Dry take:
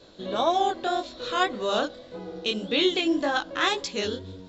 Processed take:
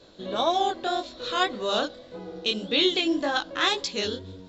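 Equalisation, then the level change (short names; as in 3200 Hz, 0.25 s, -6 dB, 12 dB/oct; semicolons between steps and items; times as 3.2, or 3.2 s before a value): dynamic EQ 4200 Hz, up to +5 dB, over -40 dBFS, Q 1.4; -1.0 dB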